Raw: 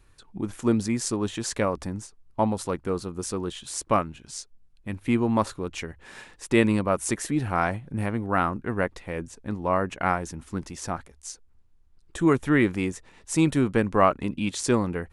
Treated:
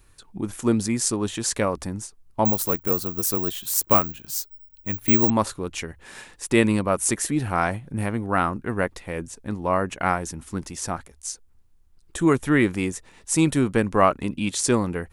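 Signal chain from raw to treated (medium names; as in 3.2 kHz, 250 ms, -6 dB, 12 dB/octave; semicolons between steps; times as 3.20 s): treble shelf 7.4 kHz +10.5 dB; 2.45–5.30 s: careless resampling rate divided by 2×, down none, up zero stuff; trim +1.5 dB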